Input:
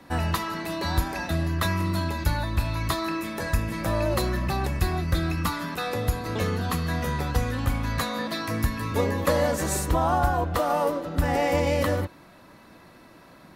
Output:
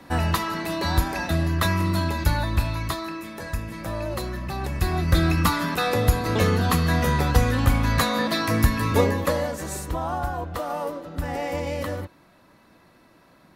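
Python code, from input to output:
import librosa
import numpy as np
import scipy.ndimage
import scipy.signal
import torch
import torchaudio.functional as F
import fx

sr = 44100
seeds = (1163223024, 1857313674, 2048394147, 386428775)

y = fx.gain(x, sr, db=fx.line((2.56, 3.0), (3.14, -4.5), (4.47, -4.5), (5.19, 6.0), (8.96, 6.0), (9.52, -5.0)))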